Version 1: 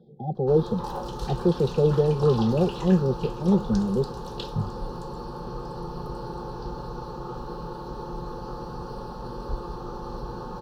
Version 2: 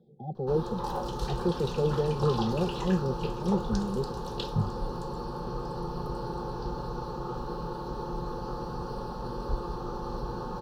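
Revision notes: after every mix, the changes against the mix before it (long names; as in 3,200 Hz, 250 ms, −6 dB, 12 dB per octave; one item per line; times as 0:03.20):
speech −7.0 dB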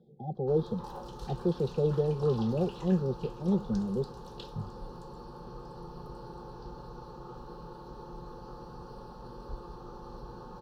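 background −10.0 dB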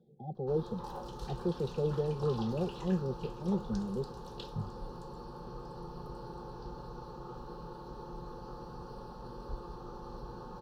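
speech −4.5 dB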